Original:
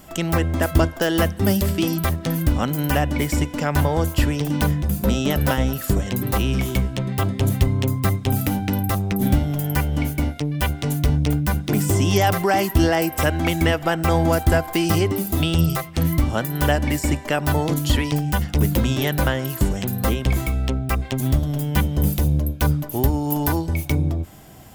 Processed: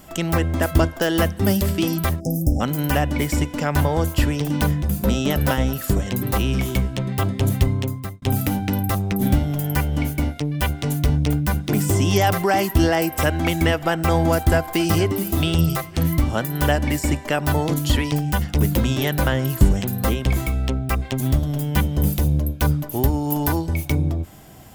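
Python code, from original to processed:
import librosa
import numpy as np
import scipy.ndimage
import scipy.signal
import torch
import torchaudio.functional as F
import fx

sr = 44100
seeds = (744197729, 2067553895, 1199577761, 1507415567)

y = fx.spec_erase(x, sr, start_s=2.2, length_s=0.41, low_hz=830.0, high_hz=4900.0)
y = fx.echo_throw(y, sr, start_s=14.33, length_s=0.81, ms=460, feedback_pct=30, wet_db=-16.0)
y = fx.low_shelf(y, sr, hz=220.0, db=7.0, at=(19.32, 19.81))
y = fx.edit(y, sr, fx.fade_out_span(start_s=7.69, length_s=0.53), tone=tone)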